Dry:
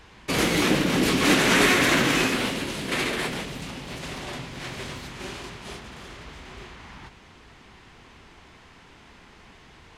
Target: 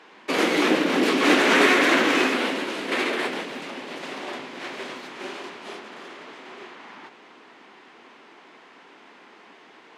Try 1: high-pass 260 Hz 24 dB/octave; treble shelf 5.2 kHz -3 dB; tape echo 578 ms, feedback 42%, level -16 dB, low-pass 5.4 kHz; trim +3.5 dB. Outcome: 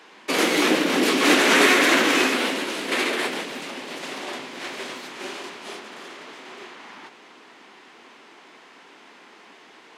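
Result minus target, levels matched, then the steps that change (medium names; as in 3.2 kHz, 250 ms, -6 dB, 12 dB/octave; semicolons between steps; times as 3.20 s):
8 kHz band +6.0 dB
change: treble shelf 5.2 kHz -14 dB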